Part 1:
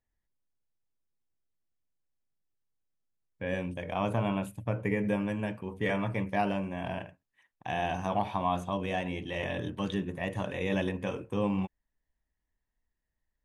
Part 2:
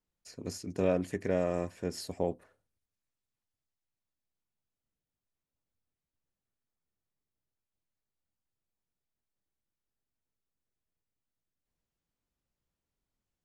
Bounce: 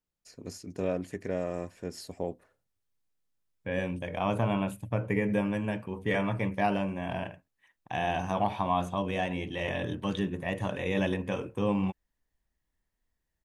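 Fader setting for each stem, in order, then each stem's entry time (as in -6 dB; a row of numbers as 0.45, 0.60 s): +1.5, -2.5 dB; 0.25, 0.00 s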